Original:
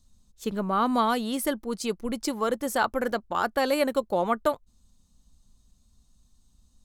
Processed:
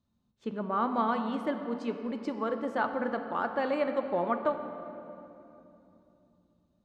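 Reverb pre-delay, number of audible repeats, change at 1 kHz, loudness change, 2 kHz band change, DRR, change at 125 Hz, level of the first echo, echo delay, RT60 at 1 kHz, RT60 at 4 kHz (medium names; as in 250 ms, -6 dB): 3 ms, no echo, -4.0 dB, -4.5 dB, -5.5 dB, 6.0 dB, -5.0 dB, no echo, no echo, 2.7 s, 1.9 s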